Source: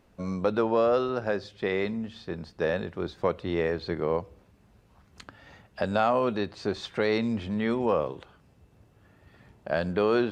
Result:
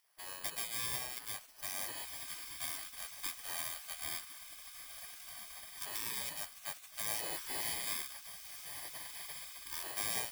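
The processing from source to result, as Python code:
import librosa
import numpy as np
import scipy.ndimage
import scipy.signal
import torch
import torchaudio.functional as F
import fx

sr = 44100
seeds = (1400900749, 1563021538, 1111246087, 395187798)

y = fx.bit_reversed(x, sr, seeds[0], block=32)
y = fx.echo_diffused(y, sr, ms=1584, feedback_pct=50, wet_db=-7)
y = fx.spec_gate(y, sr, threshold_db=-20, keep='weak')
y = y * 10.0 ** (-4.0 / 20.0)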